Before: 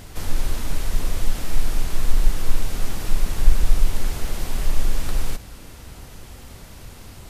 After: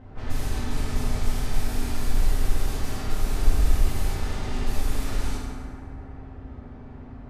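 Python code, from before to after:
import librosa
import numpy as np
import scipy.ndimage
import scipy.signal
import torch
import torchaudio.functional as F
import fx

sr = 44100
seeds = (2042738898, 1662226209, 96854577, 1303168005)

y = fx.env_lowpass(x, sr, base_hz=1100.0, full_db=-11.5)
y = fx.rev_fdn(y, sr, rt60_s=2.4, lf_ratio=1.05, hf_ratio=0.45, size_ms=23.0, drr_db=-6.5)
y = y * 10.0 ** (-8.0 / 20.0)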